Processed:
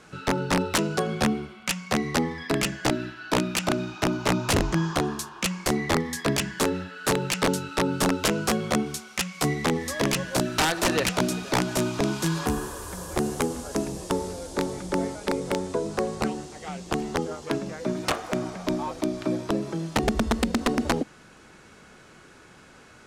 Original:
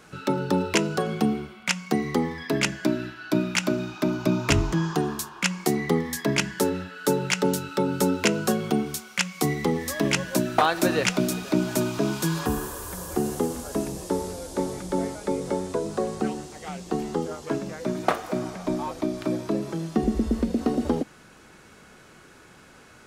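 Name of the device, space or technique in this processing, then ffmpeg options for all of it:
overflowing digital effects unit: -af "aeval=exprs='(mod(5.31*val(0)+1,2)-1)/5.31':c=same,lowpass=10k"

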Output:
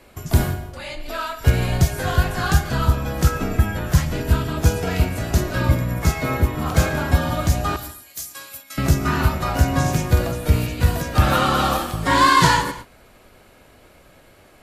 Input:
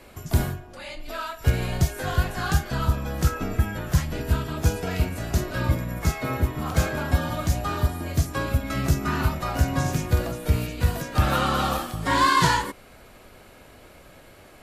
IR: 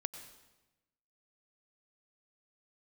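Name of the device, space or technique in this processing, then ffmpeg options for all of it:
keyed gated reverb: -filter_complex "[0:a]asettb=1/sr,asplit=3[a][b][c];[a]atrim=end=7.764[d];[b]atrim=start=7.76:end=8.78,asetpts=PTS-STARTPTS,afade=t=in:d=0.004:c=qsin,afade=t=out:st=1.016:d=0.004:c=qsin,aderivative[e];[c]atrim=start=8.776[f];[d][e]acrossfade=d=0.004:c1=hsin:c2=qsin[g];[g][f]acrossfade=d=0.004:c1=qsin:c2=hsin,asplit=3[h][i][j];[1:a]atrim=start_sample=2205[k];[i][k]afir=irnorm=-1:irlink=0[l];[j]apad=whole_len=644992[m];[l][m]sidechaingate=range=-33dB:threshold=-43dB:ratio=16:detection=peak,volume=2dB[n];[h][n]amix=inputs=2:normalize=0,volume=-1.5dB"

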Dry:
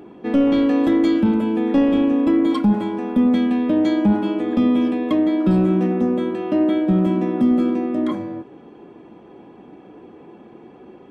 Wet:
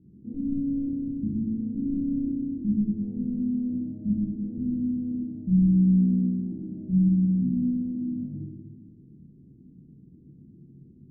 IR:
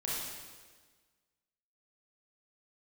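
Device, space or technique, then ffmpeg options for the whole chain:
club heard from the street: -filter_complex "[0:a]asettb=1/sr,asplit=3[a][b][c];[a]atrim=end=2.764[d];[b]atrim=start=2.76:end=3.97,asetpts=PTS-STARTPTS,afade=t=in:d=0.004:c=qsin,afade=t=out:st=1.206:d=0.004:c=qsin,equalizer=f=590:w=2.4:g=9[e];[c]atrim=start=3.966[f];[d][e]acrossfade=d=0.004:c1=hsin:c2=qsin[g];[g][f]acrossfade=d=0.004:c1=qsin:c2=hsin,alimiter=limit=-14dB:level=0:latency=1:release=318,lowpass=f=180:w=0.5412,lowpass=f=180:w=1.3066[h];[1:a]atrim=start_sample=2205[i];[h][i]afir=irnorm=-1:irlink=0"

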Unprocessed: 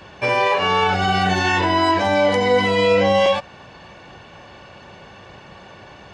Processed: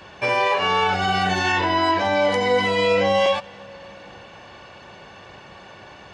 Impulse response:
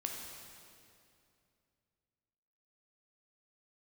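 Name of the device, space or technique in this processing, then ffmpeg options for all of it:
compressed reverb return: -filter_complex "[0:a]asplit=2[a][b];[1:a]atrim=start_sample=2205[c];[b][c]afir=irnorm=-1:irlink=0,acompressor=threshold=-26dB:ratio=6,volume=-10dB[d];[a][d]amix=inputs=2:normalize=0,asettb=1/sr,asplit=3[e][f][g];[e]atrim=end=1.524[h];[f]atrim=start=1.52:end=2.22,asetpts=PTS-STARTPTS,afade=t=in:d=0.004:c=qsin,afade=t=out:st=0.696:d=0.004:c=qsin,lowpass=6.4k[i];[g]atrim=start=2.216[j];[h][i]acrossfade=d=0.004:c1=hsin:c2=qsin[k];[k][j]acrossfade=d=0.004:c1=qsin:c2=hsin,lowshelf=f=350:g=-4.5,volume=-2dB"

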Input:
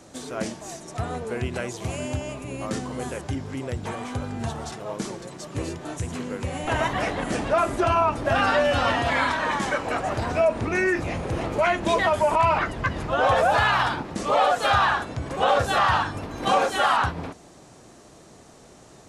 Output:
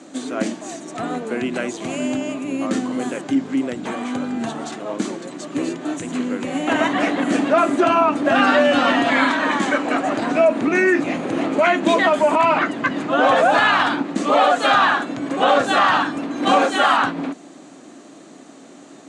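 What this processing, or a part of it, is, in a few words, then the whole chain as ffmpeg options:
television speaker: -af "highpass=f=190:w=0.5412,highpass=f=190:w=1.3066,equalizer=f=280:t=q:w=4:g=10,equalizer=f=450:t=q:w=4:g=-4,equalizer=f=920:t=q:w=4:g=-4,equalizer=f=5.3k:t=q:w=4:g=-8,lowpass=f=8.4k:w=0.5412,lowpass=f=8.4k:w=1.3066,volume=6dB"

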